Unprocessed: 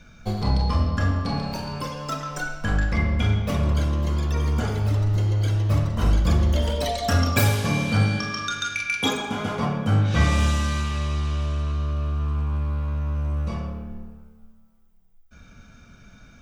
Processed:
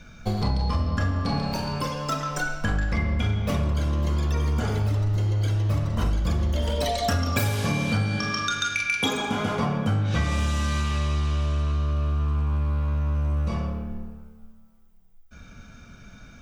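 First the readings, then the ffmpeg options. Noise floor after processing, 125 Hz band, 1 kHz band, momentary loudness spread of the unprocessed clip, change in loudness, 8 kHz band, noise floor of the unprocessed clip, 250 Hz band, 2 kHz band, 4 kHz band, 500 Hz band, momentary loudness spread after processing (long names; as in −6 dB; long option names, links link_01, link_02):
−49 dBFS, −2.0 dB, −0.5 dB, 9 LU, −1.5 dB, −1.0 dB, −51 dBFS, −1.5 dB, −0.5 dB, −0.5 dB, −1.0 dB, 4 LU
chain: -af "acompressor=threshold=-23dB:ratio=6,volume=2.5dB"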